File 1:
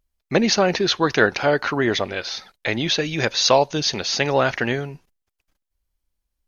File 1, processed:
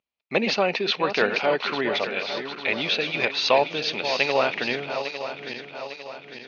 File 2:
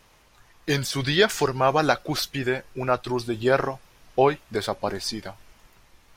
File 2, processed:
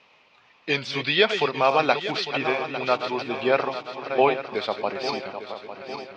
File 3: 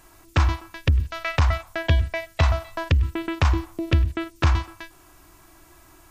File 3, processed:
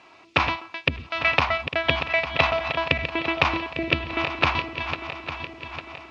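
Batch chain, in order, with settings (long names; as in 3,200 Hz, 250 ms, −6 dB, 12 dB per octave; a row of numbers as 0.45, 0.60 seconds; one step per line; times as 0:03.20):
feedback delay that plays each chunk backwards 426 ms, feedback 70%, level −9 dB
loudspeaker in its box 250–4,400 Hz, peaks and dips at 330 Hz −6 dB, 1,600 Hz −6 dB, 2,500 Hz +8 dB
loudness normalisation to −24 LKFS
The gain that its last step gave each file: −3.0, +1.0, +5.0 decibels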